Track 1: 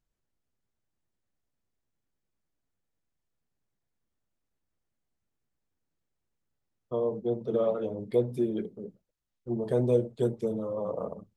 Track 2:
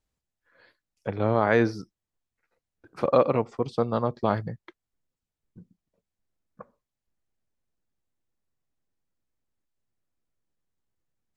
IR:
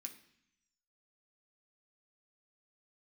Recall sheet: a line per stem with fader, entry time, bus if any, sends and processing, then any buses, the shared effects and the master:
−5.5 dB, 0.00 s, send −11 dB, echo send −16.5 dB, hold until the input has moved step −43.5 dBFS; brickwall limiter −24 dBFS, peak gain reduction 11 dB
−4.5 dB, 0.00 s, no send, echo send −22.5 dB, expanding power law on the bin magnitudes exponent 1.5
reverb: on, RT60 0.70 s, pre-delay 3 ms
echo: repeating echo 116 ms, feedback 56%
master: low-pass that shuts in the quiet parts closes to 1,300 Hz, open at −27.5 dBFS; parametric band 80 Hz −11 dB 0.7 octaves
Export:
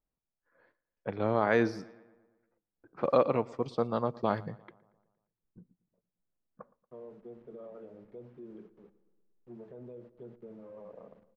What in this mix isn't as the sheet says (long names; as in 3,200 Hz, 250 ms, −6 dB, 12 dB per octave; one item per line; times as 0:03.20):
stem 1 −5.5 dB → −15.5 dB
stem 2: missing expanding power law on the bin magnitudes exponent 1.5